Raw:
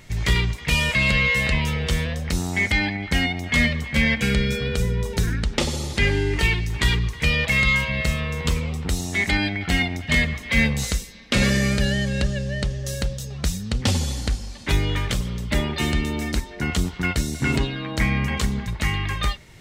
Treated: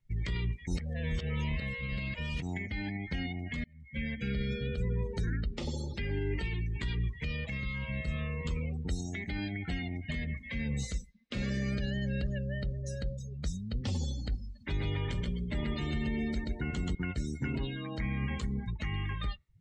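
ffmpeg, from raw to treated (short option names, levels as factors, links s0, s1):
-filter_complex "[0:a]asettb=1/sr,asplit=3[s0][s1][s2];[s0]atrim=end=14.644[s3];[s1]atrim=start=14.64:end=16.95,asetpts=PTS-STARTPTS,afade=t=in:d=0.004:c=qsin,afade=t=out:st=2.306:d=0.004:c=qsin,aecho=1:1:129|258|387|516:0.708|0.227|0.0725|0.0232,atrim=end_sample=101871[s4];[s2]atrim=start=16.946[s5];[s3][s4]acrossfade=d=0.004:c1=hsin:c2=qsin[s6];[s6][s5]acrossfade=d=0.004:c1=qsin:c2=hsin,asplit=4[s7][s8][s9][s10];[s7]atrim=end=0.672[s11];[s8]atrim=start=0.668:end=2.422,asetpts=PTS-STARTPTS,areverse[s12];[s9]atrim=start=2.418:end=3.64,asetpts=PTS-STARTPTS,afade=t=out:st=1.218:d=0.004:c=hsin[s13];[s10]atrim=start=3.64,asetpts=PTS-STARTPTS,afade=t=in:d=0.79[s14];[s11][s12]acrossfade=d=0.004:c1=hsin:c2=hsin[s15];[s13][s14]concat=n=2:v=0:a=1[s16];[s15][s16]acrossfade=d=0.004:c1=hsin:c2=hsin,afftdn=nr=32:nf=-31,alimiter=limit=0.168:level=0:latency=1:release=67,acrossover=split=410[s17][s18];[s18]acompressor=threshold=0.0251:ratio=6[s19];[s17][s19]amix=inputs=2:normalize=0,volume=0.398"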